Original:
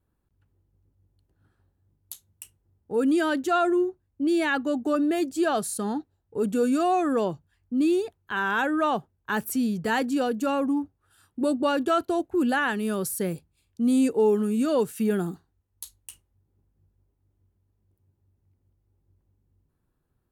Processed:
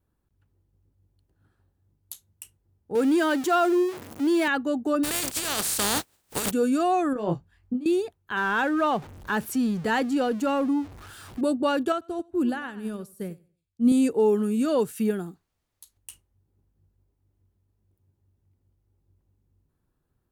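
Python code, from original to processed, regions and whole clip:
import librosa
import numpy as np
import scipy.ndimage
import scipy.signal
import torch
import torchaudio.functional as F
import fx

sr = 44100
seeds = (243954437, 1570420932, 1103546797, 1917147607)

y = fx.chain(x, sr, fx.zero_step(step_db=-31.0),
    fx.highpass(hz=180.0, slope=12), at=(2.95, 4.48))
y = fx.spec_flatten(y, sr, power=0.29, at=(5.03, 6.5), fade=0.02)
y = fx.peak_eq(y, sr, hz=8400.0, db=4.0, octaves=0.34, at=(5.03, 6.5), fade=0.02)
y = fx.over_compress(y, sr, threshold_db=-28.0, ratio=-1.0, at=(5.03, 6.5), fade=0.02)
y = fx.chain(y, sr, fx.high_shelf(hz=4800.0, db=-9.0),
    fx.over_compress(threshold_db=-28.0, ratio=-0.5),
    fx.doubler(ms=24.0, db=-4), at=(7.13, 7.86))
y = fx.chain(y, sr, fx.zero_step(step_db=-38.5),
    fx.high_shelf(hz=9300.0, db=-8.0), at=(8.37, 11.41))
y = fx.chain(y, sr, fx.low_shelf(hz=250.0, db=8.5),
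    fx.echo_feedback(ms=94, feedback_pct=29, wet_db=-13),
    fx.upward_expand(threshold_db=-30.0, expansion=2.5), at=(11.92, 13.92))
y = fx.dmg_noise_colour(y, sr, seeds[0], colour='pink', level_db=-69.0, at=(15.1, 15.96), fade=0.02)
y = fx.upward_expand(y, sr, threshold_db=-41.0, expansion=1.5, at=(15.1, 15.96), fade=0.02)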